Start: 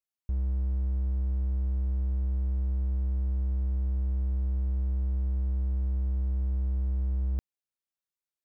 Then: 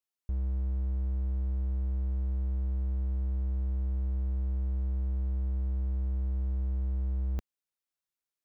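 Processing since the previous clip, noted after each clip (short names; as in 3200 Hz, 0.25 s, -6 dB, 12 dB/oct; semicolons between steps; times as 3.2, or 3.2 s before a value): bell 100 Hz -3.5 dB 1.7 oct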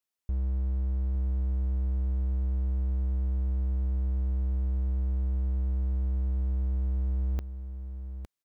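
echo 0.859 s -9.5 dB; gain +2 dB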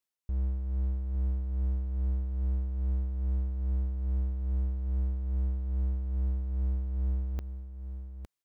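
tremolo 2.4 Hz, depth 46%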